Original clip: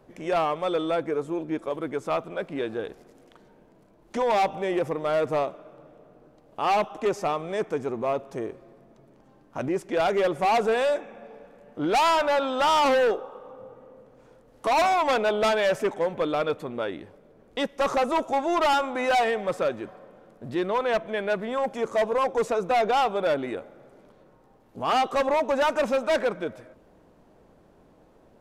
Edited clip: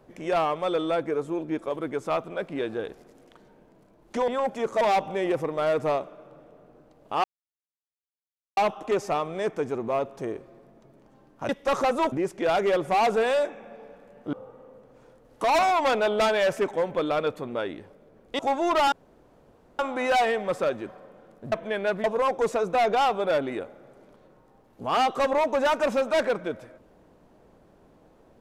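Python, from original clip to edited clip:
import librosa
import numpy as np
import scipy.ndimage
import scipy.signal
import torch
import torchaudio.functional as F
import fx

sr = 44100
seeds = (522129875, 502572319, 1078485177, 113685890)

y = fx.edit(x, sr, fx.insert_silence(at_s=6.71, length_s=1.33),
    fx.cut(start_s=11.84, length_s=1.72),
    fx.move(start_s=17.62, length_s=0.63, to_s=9.63),
    fx.insert_room_tone(at_s=18.78, length_s=0.87),
    fx.cut(start_s=20.51, length_s=0.44),
    fx.move(start_s=21.47, length_s=0.53, to_s=4.28), tone=tone)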